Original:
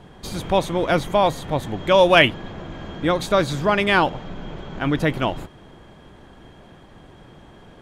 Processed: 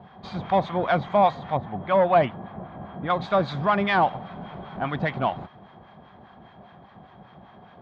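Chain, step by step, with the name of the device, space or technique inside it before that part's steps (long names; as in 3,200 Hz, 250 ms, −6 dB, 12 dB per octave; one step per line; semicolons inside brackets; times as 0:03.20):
0:01.57–0:03.10: low-pass filter 1,100 Hz 6 dB per octave
guitar amplifier with harmonic tremolo (two-band tremolo in antiphase 5 Hz, depth 70%, crossover 850 Hz; soft clipping −13.5 dBFS, distortion −16 dB; loudspeaker in its box 94–3,800 Hz, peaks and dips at 200 Hz +4 dB, 310 Hz −8 dB, 470 Hz −4 dB, 740 Hz +9 dB, 1,100 Hz +5 dB, 2,800 Hz −6 dB)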